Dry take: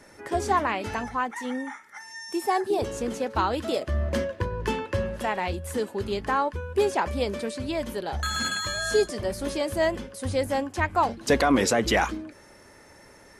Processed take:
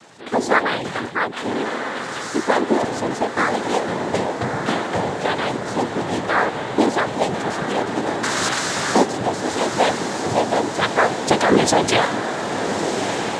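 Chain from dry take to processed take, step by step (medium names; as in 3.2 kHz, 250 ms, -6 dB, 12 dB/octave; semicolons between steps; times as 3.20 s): noise-vocoded speech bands 6; echo that smears into a reverb 1301 ms, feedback 66%, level -6.5 dB; trim +6 dB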